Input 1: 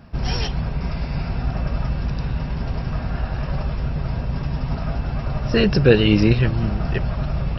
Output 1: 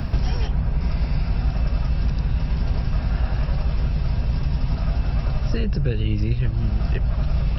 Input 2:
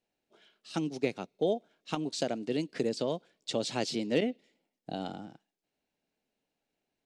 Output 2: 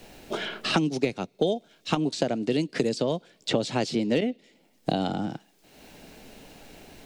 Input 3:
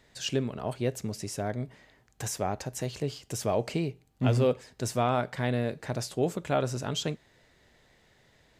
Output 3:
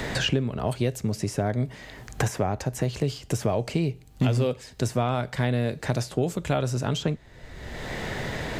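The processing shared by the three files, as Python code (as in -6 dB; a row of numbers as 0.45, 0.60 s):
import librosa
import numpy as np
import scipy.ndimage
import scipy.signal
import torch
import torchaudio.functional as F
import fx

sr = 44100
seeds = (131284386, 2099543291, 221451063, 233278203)

y = fx.low_shelf(x, sr, hz=100.0, db=11.0)
y = fx.band_squash(y, sr, depth_pct=100)
y = librosa.util.normalize(y) * 10.0 ** (-9 / 20.0)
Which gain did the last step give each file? -6.0, +5.0, +2.0 dB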